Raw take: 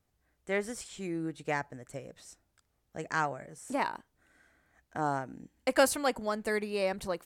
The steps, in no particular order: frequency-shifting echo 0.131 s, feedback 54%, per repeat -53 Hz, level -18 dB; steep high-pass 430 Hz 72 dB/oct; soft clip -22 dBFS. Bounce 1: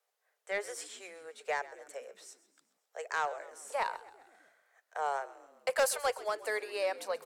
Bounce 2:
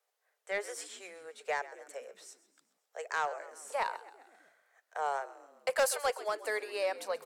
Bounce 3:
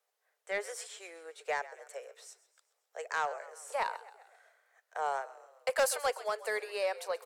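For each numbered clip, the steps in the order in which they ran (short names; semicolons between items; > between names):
steep high-pass > soft clip > frequency-shifting echo; steep high-pass > frequency-shifting echo > soft clip; frequency-shifting echo > steep high-pass > soft clip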